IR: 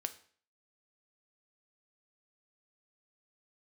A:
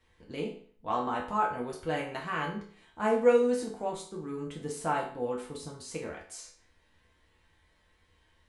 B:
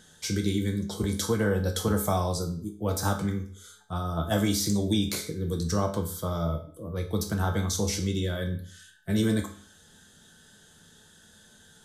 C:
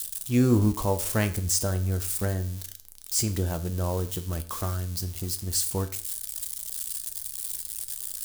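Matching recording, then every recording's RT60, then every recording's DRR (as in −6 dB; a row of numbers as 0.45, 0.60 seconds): C; 0.50, 0.50, 0.50 seconds; −3.0, 2.5, 8.5 decibels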